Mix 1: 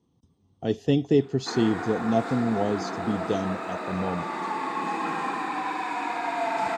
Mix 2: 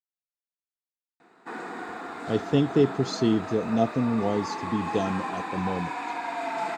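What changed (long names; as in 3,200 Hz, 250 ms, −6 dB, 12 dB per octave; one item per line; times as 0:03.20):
speech: entry +1.65 s
reverb: off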